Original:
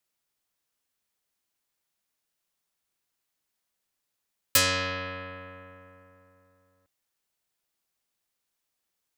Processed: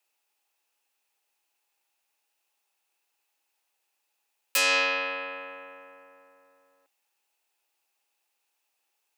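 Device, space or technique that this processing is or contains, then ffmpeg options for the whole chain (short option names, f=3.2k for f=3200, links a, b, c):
laptop speaker: -af "highpass=f=320:w=0.5412,highpass=f=320:w=1.3066,equalizer=f=830:t=o:w=0.21:g=11.5,equalizer=f=2.6k:t=o:w=0.21:g=10,alimiter=limit=-17.5dB:level=0:latency=1,volume=3dB"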